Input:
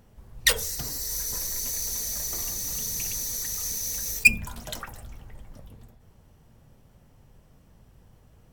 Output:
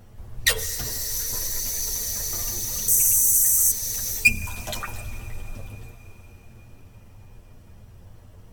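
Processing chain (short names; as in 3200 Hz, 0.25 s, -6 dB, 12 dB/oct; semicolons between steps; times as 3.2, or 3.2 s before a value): 2.88–3.71 resonant high shelf 6000 Hz +12 dB, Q 3; in parallel at +2 dB: compressor, threshold -35 dBFS, peak gain reduction 22.5 dB; on the sum: chorus voices 6, 0.71 Hz, delay 10 ms, depth 1.7 ms; reverb RT60 5.5 s, pre-delay 77 ms, DRR 15 dB; gain +2 dB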